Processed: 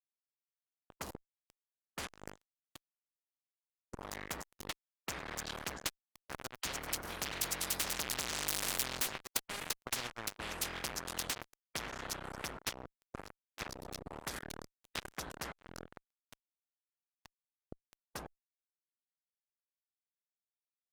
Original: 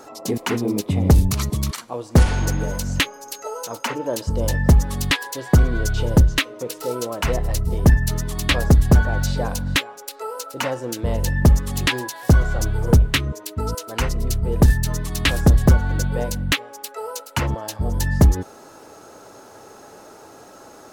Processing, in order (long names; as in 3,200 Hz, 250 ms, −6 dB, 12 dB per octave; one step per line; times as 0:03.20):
source passing by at 0:08.69, 28 m/s, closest 1.8 metres
low-shelf EQ 150 Hz +7 dB
fuzz pedal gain 42 dB, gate −50 dBFS
high-shelf EQ 4,400 Hz −6.5 dB
every bin compressed towards the loudest bin 10 to 1
level −5 dB